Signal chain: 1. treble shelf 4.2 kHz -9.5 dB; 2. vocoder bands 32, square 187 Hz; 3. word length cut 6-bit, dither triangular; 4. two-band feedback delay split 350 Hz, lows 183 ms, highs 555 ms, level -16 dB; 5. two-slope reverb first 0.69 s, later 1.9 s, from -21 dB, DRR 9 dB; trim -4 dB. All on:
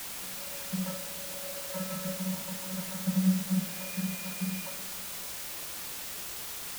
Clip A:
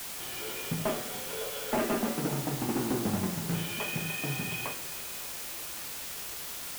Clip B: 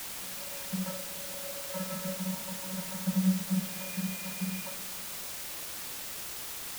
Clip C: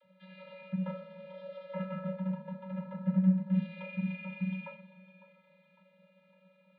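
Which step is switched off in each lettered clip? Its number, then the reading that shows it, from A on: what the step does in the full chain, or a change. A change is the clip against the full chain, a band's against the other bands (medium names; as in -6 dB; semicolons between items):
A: 2, 1 kHz band +6.5 dB; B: 5, echo-to-direct -8.0 dB to -14.5 dB; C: 3, distortion -3 dB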